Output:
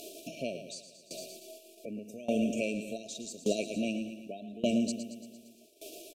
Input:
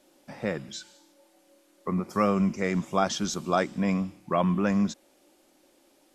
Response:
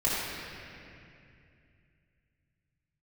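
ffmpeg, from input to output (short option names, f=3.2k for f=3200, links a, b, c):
-filter_complex "[0:a]lowshelf=f=360:g=-6,asetrate=50951,aresample=44100,atempo=0.865537,asplit=2[a][b];[b]aecho=0:1:114|228|342|456|570|684|798:0.299|0.176|0.104|0.0613|0.0362|0.0213|0.0126[c];[a][c]amix=inputs=2:normalize=0,acompressor=threshold=-28dB:ratio=10,lowshelf=f=140:g=-4.5,acompressor=mode=upward:threshold=-37dB:ratio=2.5,agate=range=-8dB:threshold=-50dB:ratio=16:detection=peak,afftfilt=real='re*(1-between(b*sr/4096,700,2300))':imag='im*(1-between(b*sr/4096,700,2300))':win_size=4096:overlap=0.75,aeval=exprs='val(0)*pow(10,-19*if(lt(mod(0.85*n/s,1),2*abs(0.85)/1000),1-mod(0.85*n/s,1)/(2*abs(0.85)/1000),(mod(0.85*n/s,1)-2*abs(0.85)/1000)/(1-2*abs(0.85)/1000))/20)':c=same,volume=8dB"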